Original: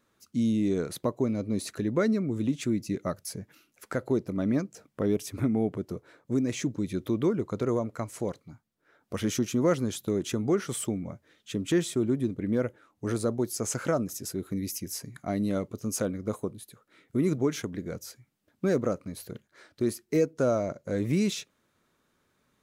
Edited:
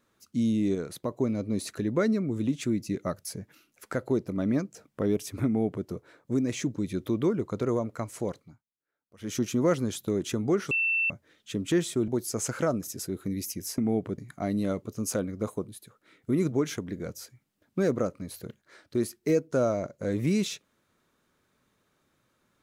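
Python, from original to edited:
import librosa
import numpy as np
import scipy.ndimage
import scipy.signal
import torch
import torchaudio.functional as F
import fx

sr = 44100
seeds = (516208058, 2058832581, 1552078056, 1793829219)

y = fx.edit(x, sr, fx.clip_gain(start_s=0.75, length_s=0.36, db=-3.5),
    fx.duplicate(start_s=5.46, length_s=0.4, to_s=15.04),
    fx.fade_down_up(start_s=8.39, length_s=1.03, db=-23.5, fade_s=0.25),
    fx.bleep(start_s=10.71, length_s=0.39, hz=2680.0, db=-23.0),
    fx.cut(start_s=12.08, length_s=1.26), tone=tone)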